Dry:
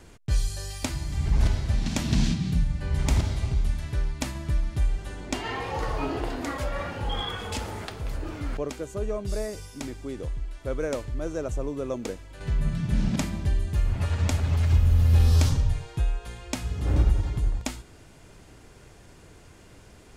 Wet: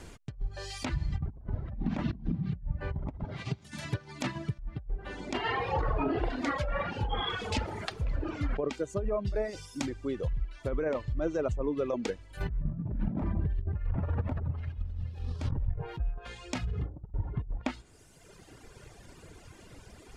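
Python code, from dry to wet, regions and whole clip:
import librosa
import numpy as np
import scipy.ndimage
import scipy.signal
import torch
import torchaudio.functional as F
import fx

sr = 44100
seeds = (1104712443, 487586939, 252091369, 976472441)

y = fx.chain(x, sr, fx.over_compress(threshold_db=-27.0, ratio=-1.0),
    fx.highpass(hz=110.0, slope=24), at=(3.24, 4.59))
y = fx.chain(y, sr, fx.high_shelf(hz=2100.0, db=-7.0),
    fx.over_compress(threshold_db=-27.0, ratio=-1.0),
    fx.resample_bad(factor=3, down='none', up='hold'), at=(12.37, 16.17))
y = fx.env_lowpass_down(y, sr, base_hz=940.0, full_db=-21.0)
y = fx.dereverb_blind(y, sr, rt60_s=1.9)
y = fx.over_compress(y, sr, threshold_db=-30.0, ratio=-0.5)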